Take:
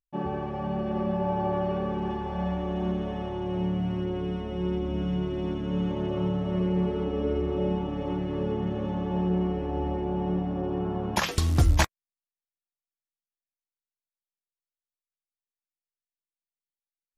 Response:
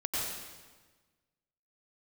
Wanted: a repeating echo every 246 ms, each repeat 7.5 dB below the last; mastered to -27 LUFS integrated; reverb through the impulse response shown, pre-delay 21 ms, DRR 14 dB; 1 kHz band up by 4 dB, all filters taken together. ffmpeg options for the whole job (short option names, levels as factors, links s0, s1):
-filter_complex "[0:a]equalizer=f=1000:t=o:g=5,aecho=1:1:246|492|738|984|1230:0.422|0.177|0.0744|0.0312|0.0131,asplit=2[s0][s1];[1:a]atrim=start_sample=2205,adelay=21[s2];[s1][s2]afir=irnorm=-1:irlink=0,volume=0.1[s3];[s0][s3]amix=inputs=2:normalize=0,volume=1.06"